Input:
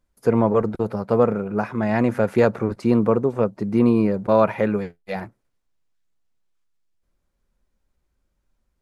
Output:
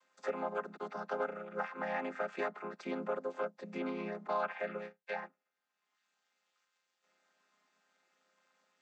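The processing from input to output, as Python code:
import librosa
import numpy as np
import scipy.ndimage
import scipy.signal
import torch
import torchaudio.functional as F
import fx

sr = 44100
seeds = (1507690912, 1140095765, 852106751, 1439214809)

y = fx.chord_vocoder(x, sr, chord='minor triad', root=53)
y = scipy.signal.sosfilt(scipy.signal.butter(2, 1200.0, 'highpass', fs=sr, output='sos'), y)
y = fx.band_squash(y, sr, depth_pct=70)
y = F.gain(torch.from_numpy(y), 1.0).numpy()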